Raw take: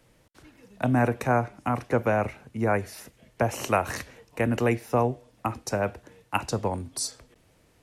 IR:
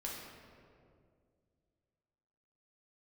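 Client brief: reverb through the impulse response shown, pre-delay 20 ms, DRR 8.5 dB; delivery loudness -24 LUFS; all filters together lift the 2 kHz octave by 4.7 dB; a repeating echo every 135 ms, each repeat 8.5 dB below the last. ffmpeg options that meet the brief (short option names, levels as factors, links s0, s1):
-filter_complex "[0:a]equalizer=f=2000:t=o:g=6.5,aecho=1:1:135|270|405|540:0.376|0.143|0.0543|0.0206,asplit=2[s0][s1];[1:a]atrim=start_sample=2205,adelay=20[s2];[s1][s2]afir=irnorm=-1:irlink=0,volume=0.376[s3];[s0][s3]amix=inputs=2:normalize=0,volume=1.19"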